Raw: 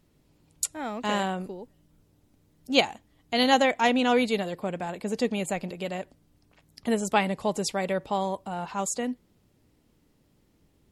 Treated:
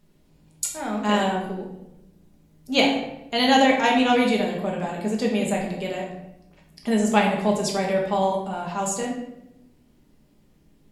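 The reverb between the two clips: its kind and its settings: shoebox room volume 280 m³, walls mixed, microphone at 1.3 m

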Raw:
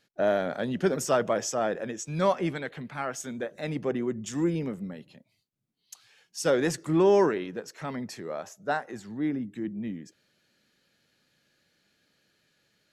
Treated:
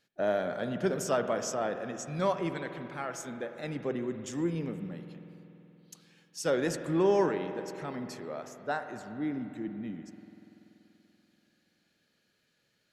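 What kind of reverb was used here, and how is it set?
spring tank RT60 3.3 s, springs 48 ms, chirp 75 ms, DRR 8 dB; gain -4.5 dB

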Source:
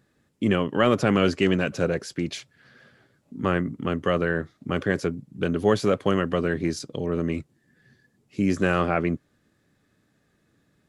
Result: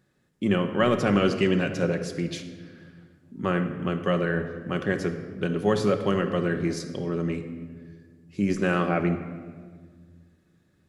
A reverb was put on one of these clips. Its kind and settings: shoebox room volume 2100 m³, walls mixed, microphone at 1 m; gain -3 dB

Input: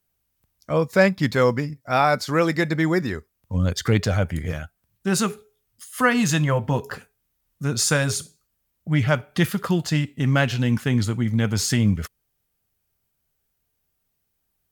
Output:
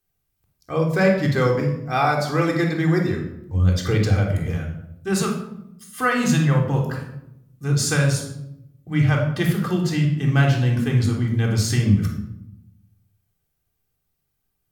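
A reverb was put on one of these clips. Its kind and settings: shoebox room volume 2200 m³, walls furnished, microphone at 3.7 m; gain -4.5 dB

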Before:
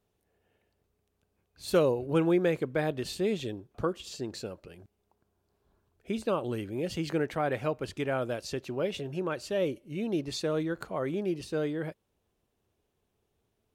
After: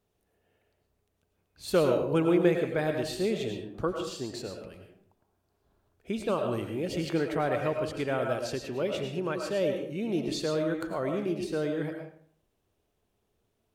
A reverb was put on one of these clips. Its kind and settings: digital reverb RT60 0.58 s, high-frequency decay 0.65×, pre-delay 65 ms, DRR 3.5 dB

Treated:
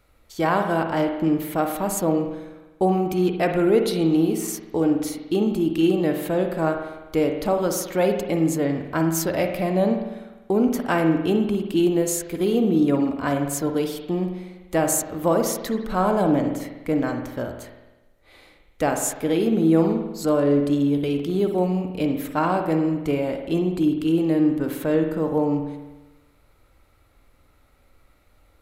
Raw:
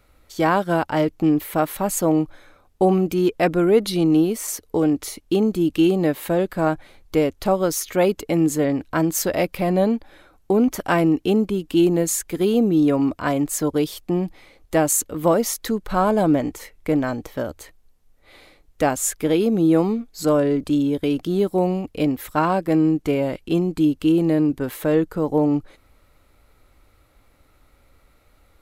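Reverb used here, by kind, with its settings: spring tank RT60 1.1 s, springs 49 ms, chirp 35 ms, DRR 4.5 dB; gain -3 dB

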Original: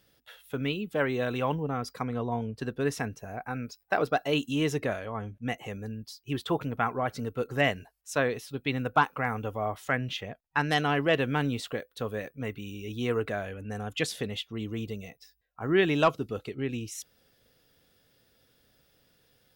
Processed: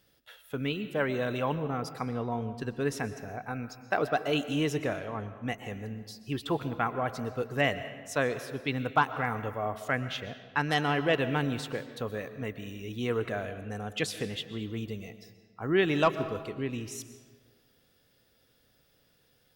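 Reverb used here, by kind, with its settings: digital reverb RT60 1.5 s, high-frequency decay 0.7×, pre-delay 85 ms, DRR 11.5 dB; gain -1.5 dB

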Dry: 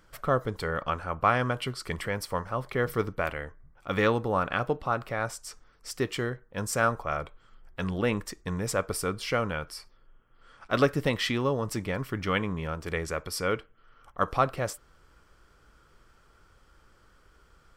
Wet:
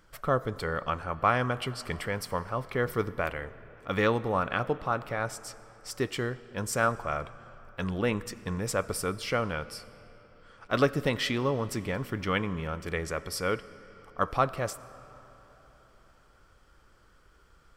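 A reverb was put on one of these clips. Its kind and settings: digital reverb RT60 4 s, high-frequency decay 0.7×, pre-delay 45 ms, DRR 17 dB; gain -1 dB

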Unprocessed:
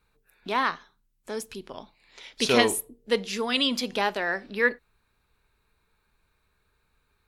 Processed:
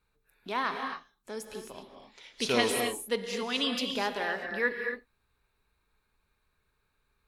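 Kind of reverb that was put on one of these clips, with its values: non-linear reverb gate 0.29 s rising, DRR 4 dB; gain -6 dB

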